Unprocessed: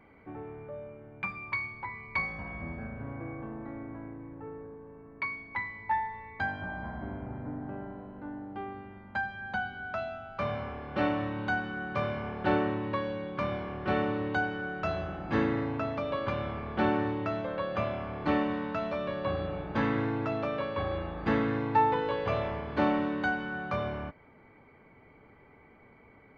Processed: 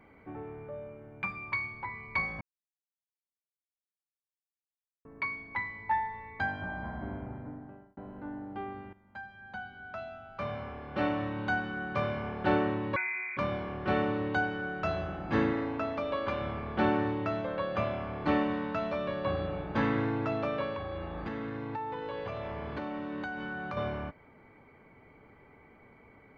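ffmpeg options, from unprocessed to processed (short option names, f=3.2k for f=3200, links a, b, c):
-filter_complex "[0:a]asettb=1/sr,asplit=3[a][b][c];[a]atrim=end=12.964[d];[b]atrim=start=12.96:end=13.37,asetpts=PTS-STARTPTS,afade=t=in:d=0.004:c=qsin,afade=t=out:st=0.406:d=0.004:c=qsin,lowpass=f=2.2k:t=q:w=0.5098,lowpass=f=2.2k:t=q:w=0.6013,lowpass=f=2.2k:t=q:w=0.9,lowpass=f=2.2k:t=q:w=2.563,afreqshift=-2600[e];[c]atrim=start=13.366[f];[d][e]acrossfade=d=0.004:c1=hsin:c2=qsin[g];[g][f]acrossfade=d=0.004:c1=qsin:c2=hsin,asettb=1/sr,asplit=3[h][i][j];[h]atrim=end=15.514[k];[i]atrim=start=15.51:end=16.42,asetpts=PTS-STARTPTS,afade=t=in:d=0.004:c=qsin,afade=t=out:st=0.906:d=0.004:c=qsin,equalizer=f=130:t=o:w=0.64:g=-12[l];[j]atrim=start=16.416[m];[k][l]acrossfade=d=0.004:c1=hsin:c2=qsin[n];[n][m]acrossfade=d=0.004:c1=qsin:c2=hsin,asettb=1/sr,asplit=3[o][p][q];[o]atrim=end=20.754[r];[p]atrim=start=20.75:end=23.77,asetpts=PTS-STARTPTS,afade=t=in:d=0.004:c=qsin,afade=t=out:st=3.016:d=0.004:c=qsin,acompressor=threshold=-33dB:ratio=10:attack=3.2:release=140:knee=1:detection=peak[s];[q]atrim=start=23.766[t];[r][s]acrossfade=d=0.004:c1=hsin:c2=qsin[u];[u][t]acrossfade=d=0.004:c1=qsin:c2=hsin,asplit=5[v][w][x][y][z];[v]atrim=end=2.41,asetpts=PTS-STARTPTS,afade=t=out:st=2.406:d=0.004:c=hsin[aa];[w]atrim=start=2.41:end=5.05,asetpts=PTS-STARTPTS,volume=0[ab];[x]atrim=start=5.05:end=7.97,asetpts=PTS-STARTPTS,afade=t=in:d=0.004:c=hsin,afade=t=out:st=2.11:d=0.81[ac];[y]atrim=start=7.97:end=8.93,asetpts=PTS-STARTPTS,afade=t=in:d=0.004:c=hsin,afade=t=out:st=0.956:d=0.004:c=hsin:silence=0.177828[ad];[z]atrim=start=8.93,asetpts=PTS-STARTPTS,afade=t=in:d=2.68:silence=0.177828[ae];[aa][ab][ac][ad][ae]concat=n=5:v=0:a=1"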